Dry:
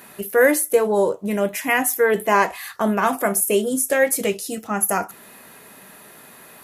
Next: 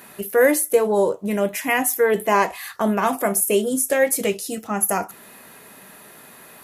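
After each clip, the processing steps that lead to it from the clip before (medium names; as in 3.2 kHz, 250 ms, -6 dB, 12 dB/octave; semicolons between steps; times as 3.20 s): dynamic bell 1.5 kHz, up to -4 dB, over -31 dBFS, Q 2.3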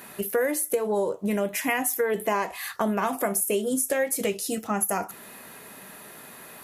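compression 6:1, threshold -22 dBFS, peak gain reduction 11 dB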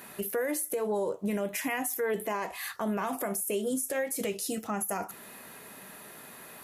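peak limiter -19.5 dBFS, peak gain reduction 7 dB; trim -3 dB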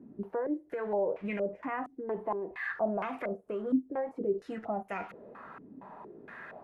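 jump at every zero crossing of -45 dBFS; step-sequenced low-pass 4.3 Hz 280–2300 Hz; trim -6 dB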